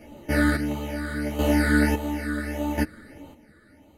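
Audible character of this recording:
phaser sweep stages 8, 1.6 Hz, lowest notch 800–1,600 Hz
chopped level 0.72 Hz, depth 65%, duty 40%
a shimmering, thickened sound

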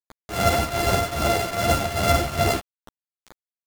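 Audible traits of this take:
a buzz of ramps at a fixed pitch in blocks of 64 samples
tremolo triangle 2.5 Hz, depth 85%
a quantiser's noise floor 6 bits, dither none
a shimmering, thickened sound

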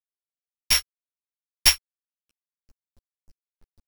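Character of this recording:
a buzz of ramps at a fixed pitch in blocks of 8 samples
tremolo triangle 8 Hz, depth 50%
a quantiser's noise floor 10 bits, dither none
a shimmering, thickened sound

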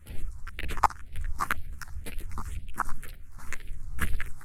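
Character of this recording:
phaser sweep stages 4, 2 Hz, lowest notch 490–1,100 Hz
sample-and-hold tremolo
a shimmering, thickened sound

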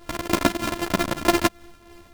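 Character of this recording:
a buzz of ramps at a fixed pitch in blocks of 128 samples
tremolo triangle 3.2 Hz, depth 55%
a shimmering, thickened sound

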